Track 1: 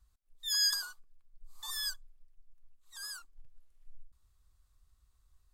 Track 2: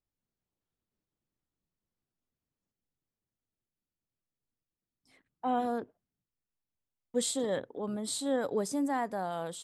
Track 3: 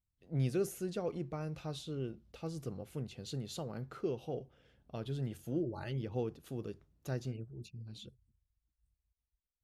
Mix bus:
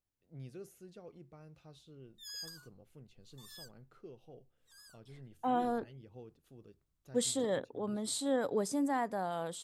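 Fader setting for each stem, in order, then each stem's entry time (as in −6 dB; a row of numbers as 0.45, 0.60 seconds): −16.0, −1.5, −15.0 decibels; 1.75, 0.00, 0.00 seconds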